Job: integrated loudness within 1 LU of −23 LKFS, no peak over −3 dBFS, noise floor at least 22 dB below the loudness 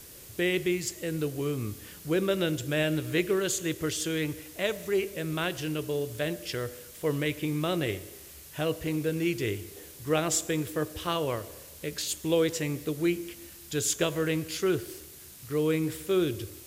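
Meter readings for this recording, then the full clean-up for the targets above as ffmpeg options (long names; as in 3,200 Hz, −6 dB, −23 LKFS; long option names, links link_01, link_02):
background noise floor −48 dBFS; target noise floor −52 dBFS; integrated loudness −30.0 LKFS; sample peak −13.0 dBFS; target loudness −23.0 LKFS
→ -af "afftdn=noise_reduction=6:noise_floor=-48"
-af "volume=7dB"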